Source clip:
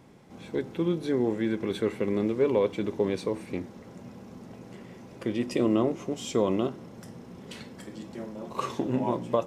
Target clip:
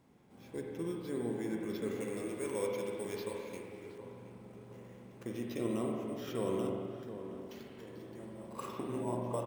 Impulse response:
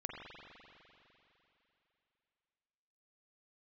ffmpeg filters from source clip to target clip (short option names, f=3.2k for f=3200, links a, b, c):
-filter_complex "[0:a]acrusher=samples=5:mix=1:aa=0.000001,asettb=1/sr,asplit=3[a][b][c];[a]atrim=end=1.914[d];[b]atrim=start=1.91:end=3.98,asetpts=PTS-STARTPTS,afade=t=in:d=0.004:c=qsin,afade=t=out:st=2.066:d=0.004:c=qsin,tiltshelf=f=970:g=-6[e];[c]atrim=start=3.976[f];[d][e]acrossfade=d=0.004:c1=hsin:c2=qsin[g];[g][f]acrossfade=d=0.004:c1=qsin:c2=hsin,asplit=2[h][i];[i]adelay=720,lowpass=f=1.4k:p=1,volume=-10dB,asplit=2[j][k];[k]adelay=720,lowpass=f=1.4k:p=1,volume=0.46,asplit=2[l][m];[m]adelay=720,lowpass=f=1.4k:p=1,volume=0.46,asplit=2[n][o];[o]adelay=720,lowpass=f=1.4k:p=1,volume=0.46,asplit=2[p][q];[q]adelay=720,lowpass=f=1.4k:p=1,volume=0.46[r];[h][j][l][n][p][r]amix=inputs=6:normalize=0[s];[1:a]atrim=start_sample=2205,afade=t=out:st=0.43:d=0.01,atrim=end_sample=19404[t];[s][t]afir=irnorm=-1:irlink=0,volume=-8.5dB"